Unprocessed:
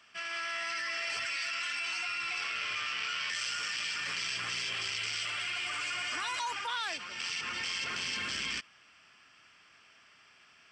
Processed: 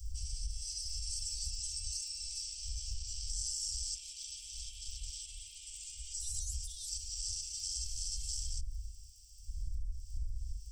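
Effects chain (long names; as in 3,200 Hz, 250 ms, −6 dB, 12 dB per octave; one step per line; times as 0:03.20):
wind on the microphone 110 Hz −42 dBFS
0:03.95–0:06.14: flat-topped bell 2,800 Hz +13 dB 1.1 octaves
brickwall limiter −31.5 dBFS, peak gain reduction 19 dB
high-shelf EQ 6,900 Hz +8.5 dB
surface crackle 29 per second −56 dBFS
inverse Chebyshev band-stop filter 240–1,700 Hz, stop band 70 dB
downward compressor, threshold −45 dBFS, peak gain reduction 9 dB
level +12 dB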